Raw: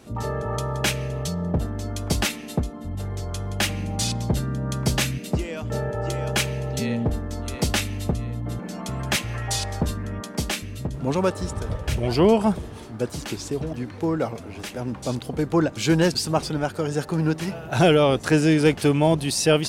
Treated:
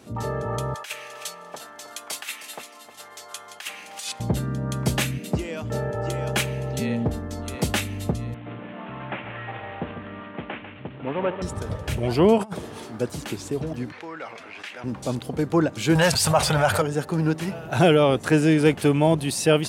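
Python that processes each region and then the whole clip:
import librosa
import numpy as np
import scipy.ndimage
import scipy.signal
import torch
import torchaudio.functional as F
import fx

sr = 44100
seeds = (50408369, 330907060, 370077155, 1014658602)

y = fx.chain(x, sr, fx.highpass(hz=1100.0, slope=12),
    fx.over_compress(threshold_db=-29.0, ratio=-0.5),
    fx.echo_feedback(ms=311, feedback_pct=21, wet_db=-12.5), at=(0.74, 4.2))
y = fx.chain(y, sr, fx.cvsd(bps=16000),
    fx.highpass(hz=350.0, slope=6),
    fx.echo_single(ms=146, db=-9.0), at=(8.34, 11.42))
y = fx.chain(y, sr, fx.highpass(hz=260.0, slope=6),
    fx.over_compress(threshold_db=-29.0, ratio=-0.5), at=(12.38, 12.99))
y = fx.chain(y, sr, fx.bandpass_q(hz=2100.0, q=1.3),
    fx.env_flatten(amount_pct=50), at=(13.92, 14.84))
y = fx.chain(y, sr, fx.curve_eq(hz=(120.0, 330.0, 590.0), db=(0, -17, 3)),
    fx.env_flatten(amount_pct=70), at=(15.95, 16.82))
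y = scipy.signal.sosfilt(scipy.signal.butter(2, 79.0, 'highpass', fs=sr, output='sos'), y)
y = fx.dynamic_eq(y, sr, hz=5200.0, q=1.6, threshold_db=-44.0, ratio=4.0, max_db=-6)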